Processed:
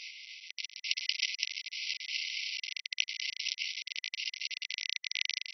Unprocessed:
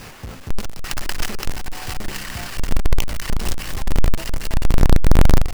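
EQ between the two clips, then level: brick-wall FIR band-pass 2000–5900 Hz; 0.0 dB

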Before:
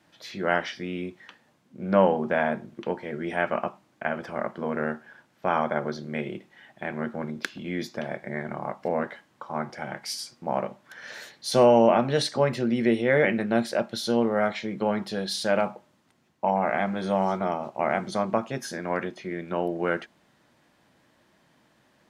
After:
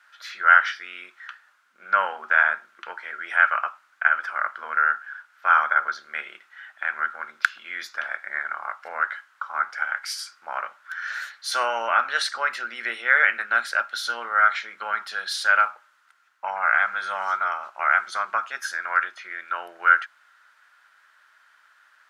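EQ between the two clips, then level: resonant high-pass 1400 Hz, resonance Q 7; +1.0 dB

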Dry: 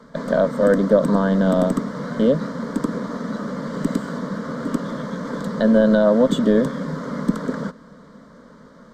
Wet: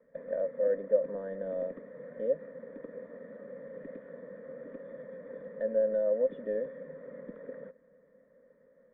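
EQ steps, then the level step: dynamic EQ 140 Hz, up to -4 dB, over -27 dBFS, Q 0.74; vocal tract filter e; -7.0 dB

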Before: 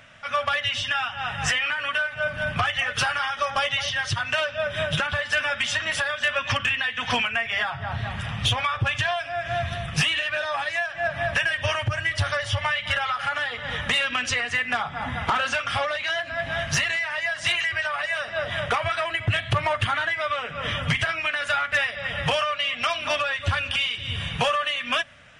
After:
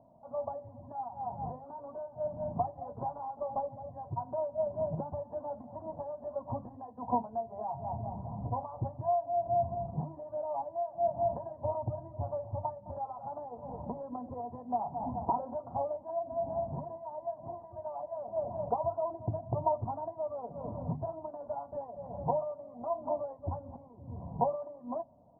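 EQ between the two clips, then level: rippled Chebyshev low-pass 1000 Hz, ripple 6 dB; low shelf 150 Hz -7 dB; notches 50/100/150 Hz; 0.0 dB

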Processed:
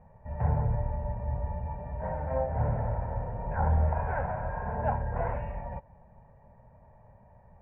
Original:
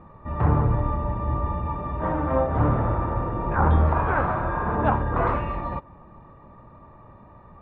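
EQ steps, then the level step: LPF 1700 Hz 12 dB/oct; fixed phaser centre 1200 Hz, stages 6; -5.0 dB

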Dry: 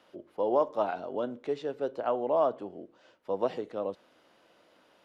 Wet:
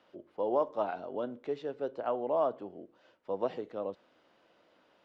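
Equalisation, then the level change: air absorption 82 m; -3.0 dB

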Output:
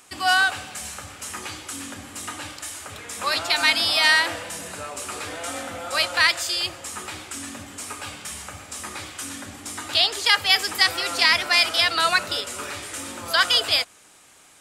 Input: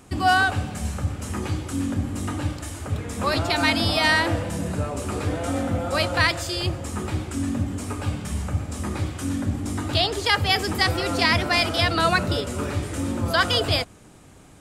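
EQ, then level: tone controls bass -5 dB, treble 0 dB; tilt shelf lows -8 dB, about 810 Hz; low shelf 230 Hz -5.5 dB; -2.5 dB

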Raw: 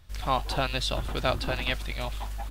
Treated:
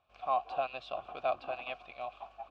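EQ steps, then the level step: vowel filter a; air absorption 100 m; +3.0 dB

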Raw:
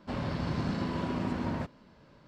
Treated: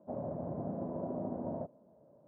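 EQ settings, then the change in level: HPF 120 Hz 12 dB/oct; ladder low-pass 710 Hz, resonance 65%; +3.5 dB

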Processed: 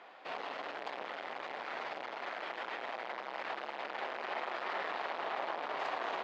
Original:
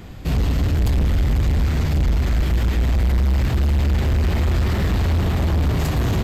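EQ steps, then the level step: ladder high-pass 560 Hz, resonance 25%; LPF 3300 Hz 6 dB/oct; air absorption 200 m; +1.5 dB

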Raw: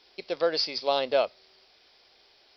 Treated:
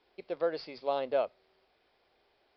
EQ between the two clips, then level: air absorption 190 m; high shelf 3000 Hz -12 dB; -4.0 dB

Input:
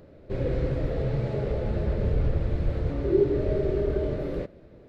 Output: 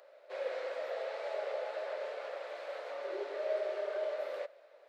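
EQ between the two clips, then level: elliptic high-pass 570 Hz, stop band 80 dB; 0.0 dB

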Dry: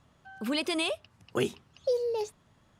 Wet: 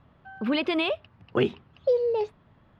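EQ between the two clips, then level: dynamic EQ 3100 Hz, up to +3 dB, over -43 dBFS, Q 0.74; air absorption 370 m; +6.0 dB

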